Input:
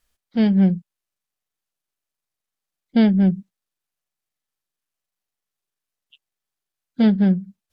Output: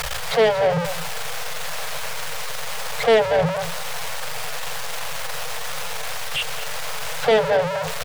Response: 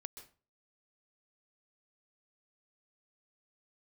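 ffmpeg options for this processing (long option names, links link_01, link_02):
-filter_complex "[0:a]aeval=exprs='val(0)+0.5*0.0355*sgn(val(0))':channel_layout=same,afftfilt=real='re*(1-between(b*sr/4096,170,420))':imag='im*(1-between(b*sr/4096,170,420))':win_size=4096:overlap=0.75,aecho=1:1:222:0.188,acrossover=split=100|510|1500[link_01][link_02][link_03][link_04];[link_01]flanger=delay=18:depth=3.8:speed=2.3[link_05];[link_04]acrusher=bits=6:mode=log:mix=0:aa=0.000001[link_06];[link_05][link_02][link_03][link_06]amix=inputs=4:normalize=0,tiltshelf=frequency=640:gain=6,asplit=2[link_07][link_08];[link_08]highpass=frequency=720:poles=1,volume=18dB,asoftclip=type=tanh:threshold=-17.5dB[link_09];[link_07][link_09]amix=inputs=2:normalize=0,lowpass=frequency=3100:poles=1,volume=-6dB,atempo=0.96,volume=9dB"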